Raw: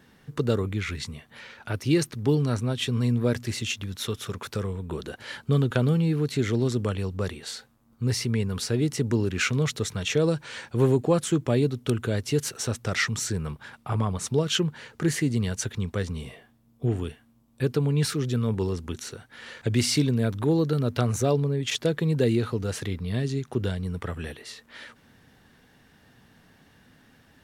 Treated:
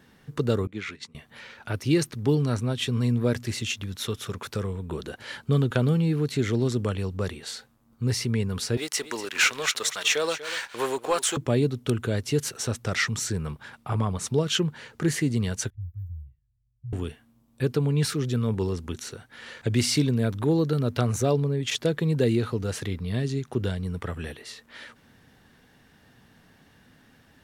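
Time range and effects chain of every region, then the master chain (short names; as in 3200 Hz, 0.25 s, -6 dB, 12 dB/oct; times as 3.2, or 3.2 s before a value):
0.67–1.15 HPF 200 Hz + expander -32 dBFS + air absorption 52 m
8.77–11.37 HPF 860 Hz + sample leveller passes 2 + echo 0.242 s -13.5 dB
15.7–16.93 inverse Chebyshev band-stop 240–9900 Hz, stop band 50 dB + high shelf 3200 Hz +11.5 dB + low-pass opened by the level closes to 2200 Hz, open at -32 dBFS
whole clip: dry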